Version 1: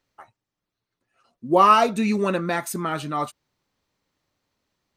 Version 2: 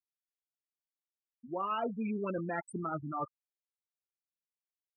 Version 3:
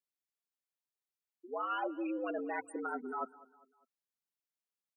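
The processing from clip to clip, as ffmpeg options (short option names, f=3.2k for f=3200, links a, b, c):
-af "afftfilt=real='re*gte(hypot(re,im),0.141)':imag='im*gte(hypot(re,im),0.141)':win_size=1024:overlap=0.75,areverse,acompressor=threshold=-26dB:ratio=8,areverse,volume=-6dB"
-af "afreqshift=110,aecho=1:1:200|400|600:0.0944|0.0415|0.0183,volume=-2dB"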